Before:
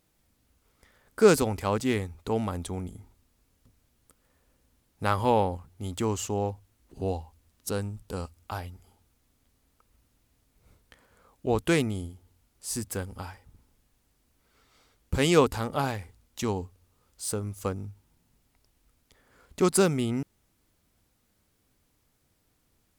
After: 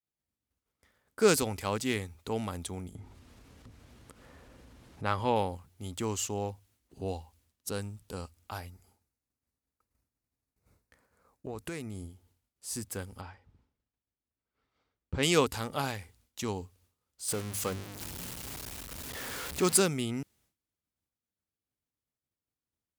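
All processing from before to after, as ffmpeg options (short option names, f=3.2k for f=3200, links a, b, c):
-filter_complex "[0:a]asettb=1/sr,asplit=3[a][b][c];[a]atrim=end=2.954[d];[b]atrim=start=2.95:end=5.36,asetpts=PTS-STARTPTS,afade=t=in:d=0.004:c=qsin,afade=t=out:st=2.406:d=0.004:c=qsin,aemphasis=mode=reproduction:type=50fm,acompressor=mode=upward:threshold=-29dB:ratio=2.5:attack=3.2:release=140:knee=2.83:detection=peak[e];[c]atrim=start=5.356[f];[d][e]acrossfade=d=0.004:c1=hsin:c2=qsin[g];[g][f]acrossfade=d=0.004:c1=qsin:c2=hsin,asettb=1/sr,asplit=3[h][i][j];[h]atrim=end=8.584[k];[i]atrim=start=8.58:end=12.08,asetpts=PTS-STARTPTS,afade=t=in:d=0.004:c=qsin,afade=t=out:st=3.496:d=0.004:c=qsin,equalizer=f=3.2k:w=3.5:g=-9,acompressor=threshold=-29dB:ratio=8:attack=3.2:release=140:knee=1:detection=peak[l];[j]atrim=start=12.076[m];[k][l]acrossfade=d=0.004:c1=hsin:c2=qsin[n];[n][m]acrossfade=d=0.004:c1=qsin:c2=hsin,asettb=1/sr,asplit=3[o][p][q];[o]atrim=end=13.214[r];[p]atrim=start=13.21:end=15.23,asetpts=PTS-STARTPTS,afade=t=in:d=0.004:c=qsin,afade=t=out:st=2.016:d=0.004:c=qsin,lowpass=5.6k,highshelf=f=4.1k:g=-10[s];[q]atrim=start=15.226[t];[r][s]acrossfade=d=0.004:c1=hsin:c2=qsin[u];[u][t]acrossfade=d=0.004:c1=qsin:c2=hsin,asettb=1/sr,asplit=3[v][w][x];[v]atrim=end=17.284[y];[w]atrim=start=17.28:end=19.8,asetpts=PTS-STARTPTS,afade=t=in:d=0.004:c=qsin,afade=t=out:st=2.516:d=0.004:c=qsin,aeval=exprs='val(0)+0.5*0.0316*sgn(val(0))':c=same,bandreject=f=50:t=h:w=6,bandreject=f=100:t=h:w=6,bandreject=f=150:t=h:w=6,bandreject=f=200:t=h:w=6,bandreject=f=250:t=h:w=6[z];[x]atrim=start=19.796[aa];[y][z]acrossfade=d=0.004:c1=hsin:c2=qsin[ab];[ab][aa]acrossfade=d=0.004:c1=qsin:c2=hsin,agate=range=-33dB:threshold=-58dB:ratio=3:detection=peak,highpass=54,adynamicequalizer=threshold=0.00794:dfrequency=1700:dqfactor=0.7:tfrequency=1700:tqfactor=0.7:attack=5:release=100:ratio=0.375:range=3.5:mode=boostabove:tftype=highshelf,volume=-5.5dB"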